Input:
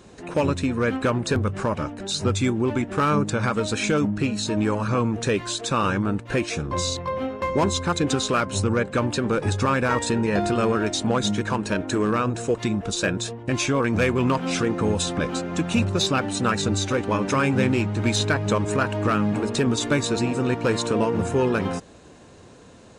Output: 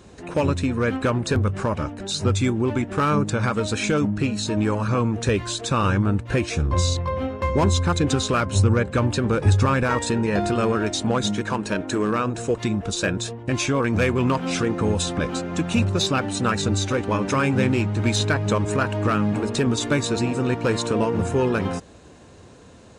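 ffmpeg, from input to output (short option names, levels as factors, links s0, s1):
-af "asetnsamples=n=441:p=0,asendcmd='5.28 equalizer g 14;9.83 equalizer g 3.5;11.27 equalizer g -4.5;12.38 equalizer g 4.5',equalizer=f=71:t=o:w=1.2:g=6"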